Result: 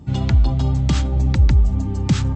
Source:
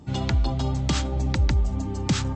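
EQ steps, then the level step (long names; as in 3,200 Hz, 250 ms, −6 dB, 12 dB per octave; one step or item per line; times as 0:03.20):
bass and treble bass +8 dB, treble −7 dB
high-shelf EQ 5,300 Hz +8 dB
0.0 dB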